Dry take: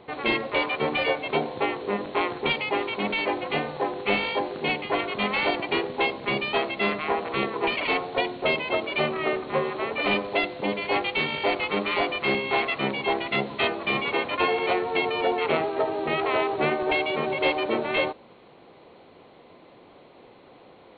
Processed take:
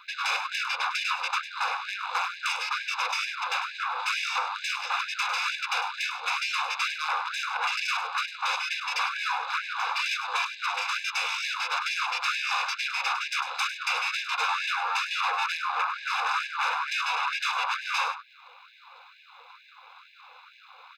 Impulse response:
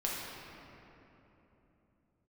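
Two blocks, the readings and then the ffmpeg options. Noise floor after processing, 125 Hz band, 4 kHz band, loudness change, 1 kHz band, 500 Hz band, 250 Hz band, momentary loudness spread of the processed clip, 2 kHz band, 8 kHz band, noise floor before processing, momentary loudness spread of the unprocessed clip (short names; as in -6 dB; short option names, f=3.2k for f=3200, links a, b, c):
-53 dBFS, under -40 dB, 0.0 dB, -2.5 dB, -0.5 dB, -23.5 dB, under -40 dB, 3 LU, -0.5 dB, n/a, -52 dBFS, 4 LU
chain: -filter_complex "[0:a]acrossover=split=440[a][b];[b]acompressor=threshold=-36dB:ratio=6[c];[a][c]amix=inputs=2:normalize=0,aeval=exprs='0.158*(cos(1*acos(clip(val(0)/0.158,-1,1)))-cos(1*PI/2))+0.0708*(cos(8*acos(clip(val(0)/0.158,-1,1)))-cos(8*PI/2))':c=same,aemphasis=mode=production:type=50fm,asplit=2[d][e];[e]highpass=f=720:p=1,volume=12dB,asoftclip=type=tanh:threshold=-16.5dB[f];[d][f]amix=inputs=2:normalize=0,lowpass=f=2.8k:p=1,volume=-6dB,aecho=1:1:0.8:0.93,asplit=2[g][h];[h]aecho=0:1:101:0.299[i];[g][i]amix=inputs=2:normalize=0,afftfilt=real='re*gte(b*sr/1024,460*pow(1600/460,0.5+0.5*sin(2*PI*2.2*pts/sr)))':imag='im*gte(b*sr/1024,460*pow(1600/460,0.5+0.5*sin(2*PI*2.2*pts/sr)))':win_size=1024:overlap=0.75,volume=-3.5dB"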